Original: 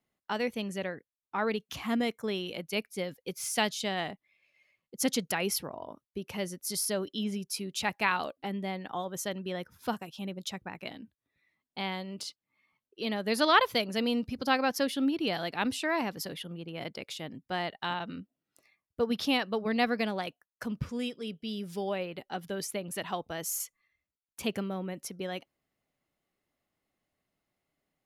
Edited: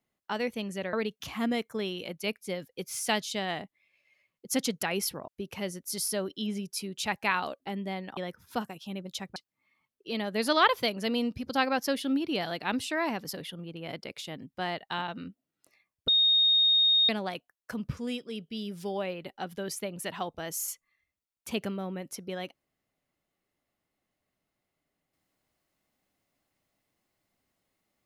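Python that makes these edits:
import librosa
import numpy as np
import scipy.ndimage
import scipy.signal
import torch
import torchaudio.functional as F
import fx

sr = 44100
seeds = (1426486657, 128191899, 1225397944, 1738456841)

y = fx.edit(x, sr, fx.cut(start_s=0.93, length_s=0.49),
    fx.cut(start_s=5.77, length_s=0.28),
    fx.cut(start_s=8.94, length_s=0.55),
    fx.cut(start_s=10.68, length_s=1.6),
    fx.bleep(start_s=19.0, length_s=1.01, hz=3710.0, db=-19.5), tone=tone)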